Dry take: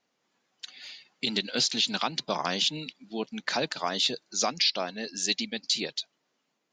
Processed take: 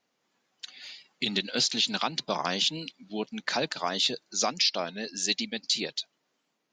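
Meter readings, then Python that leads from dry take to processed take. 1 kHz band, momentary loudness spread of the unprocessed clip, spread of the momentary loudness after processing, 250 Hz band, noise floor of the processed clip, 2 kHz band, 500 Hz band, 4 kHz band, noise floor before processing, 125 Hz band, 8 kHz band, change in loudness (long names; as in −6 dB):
0.0 dB, 17 LU, 17 LU, 0.0 dB, −78 dBFS, 0.0 dB, 0.0 dB, 0.0 dB, −78 dBFS, +0.5 dB, 0.0 dB, 0.0 dB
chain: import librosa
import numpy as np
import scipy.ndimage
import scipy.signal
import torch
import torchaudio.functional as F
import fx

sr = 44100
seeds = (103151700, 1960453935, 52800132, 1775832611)

y = fx.record_warp(x, sr, rpm=33.33, depth_cents=100.0)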